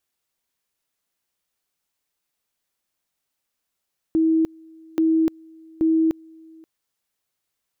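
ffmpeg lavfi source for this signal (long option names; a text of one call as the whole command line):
ffmpeg -f lavfi -i "aevalsrc='pow(10,(-15-28*gte(mod(t,0.83),0.3))/20)*sin(2*PI*322*t)':duration=2.49:sample_rate=44100" out.wav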